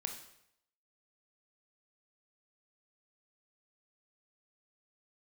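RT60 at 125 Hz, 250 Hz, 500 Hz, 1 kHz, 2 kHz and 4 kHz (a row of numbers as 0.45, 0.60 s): 0.80, 0.70, 0.75, 0.75, 0.70, 0.70 s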